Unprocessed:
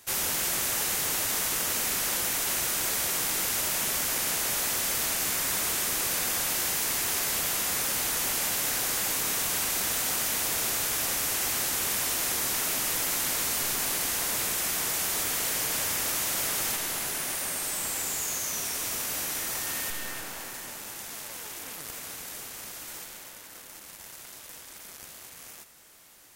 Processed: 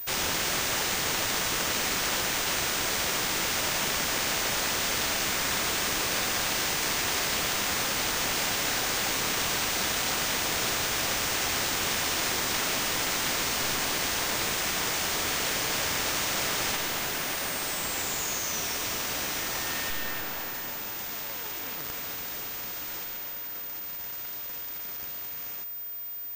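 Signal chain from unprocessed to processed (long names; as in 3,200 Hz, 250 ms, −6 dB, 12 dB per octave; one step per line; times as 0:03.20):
switching amplifier with a slow clock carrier 15,000 Hz
level +4 dB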